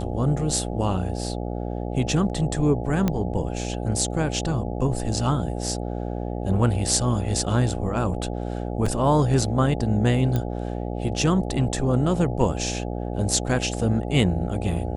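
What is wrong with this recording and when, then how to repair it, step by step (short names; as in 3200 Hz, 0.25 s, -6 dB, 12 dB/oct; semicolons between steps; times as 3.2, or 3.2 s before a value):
buzz 60 Hz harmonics 14 -29 dBFS
3.08 pop -10 dBFS
8.86 gap 4.2 ms
10.36 pop -13 dBFS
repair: de-click; de-hum 60 Hz, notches 14; interpolate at 8.86, 4.2 ms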